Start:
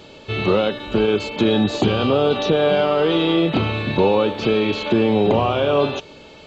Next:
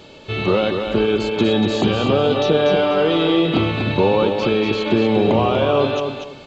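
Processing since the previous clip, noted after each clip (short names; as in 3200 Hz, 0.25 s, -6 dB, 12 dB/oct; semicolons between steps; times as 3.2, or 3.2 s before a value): feedback echo 0.241 s, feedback 23%, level -6 dB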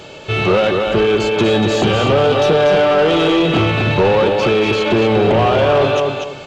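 ten-band EQ 125 Hz +3 dB, 250 Hz -10 dB, 500 Hz -5 dB, 1000 Hz -9 dB, 2000 Hz -7 dB, 4000 Hz -11 dB; overdrive pedal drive 20 dB, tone 3000 Hz, clips at -10.5 dBFS; gain +6.5 dB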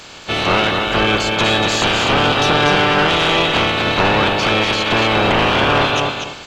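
spectral limiter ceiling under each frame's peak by 20 dB; gain -1.5 dB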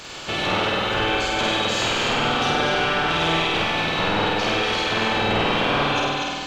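compressor 2:1, threshold -28 dBFS, peak gain reduction 10 dB; flutter echo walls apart 8.4 m, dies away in 1.3 s; gain -1.5 dB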